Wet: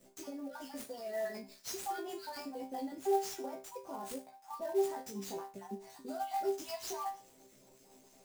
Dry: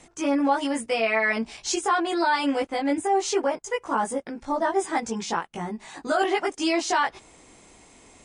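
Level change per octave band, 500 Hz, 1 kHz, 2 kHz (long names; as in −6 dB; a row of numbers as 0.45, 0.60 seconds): −11.5, −15.0, −24.5 decibels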